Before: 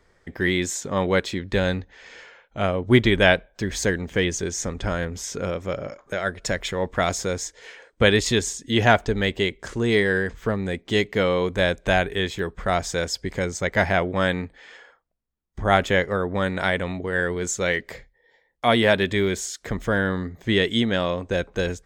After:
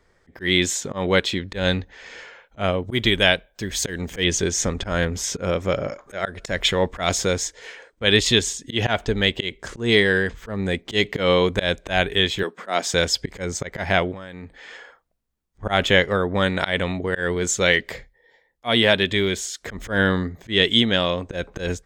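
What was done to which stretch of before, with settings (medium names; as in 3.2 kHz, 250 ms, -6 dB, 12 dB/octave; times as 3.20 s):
2.80–4.24 s: treble shelf 7.9 kHz +12 dB
12.43–12.94 s: high-pass 220 Hz 24 dB/octave
14.12–15.63 s: compression 20:1, threshold -33 dBFS
whole clip: slow attack 136 ms; dynamic bell 3.2 kHz, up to +8 dB, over -42 dBFS, Q 1.6; level rider gain up to 6.5 dB; trim -1 dB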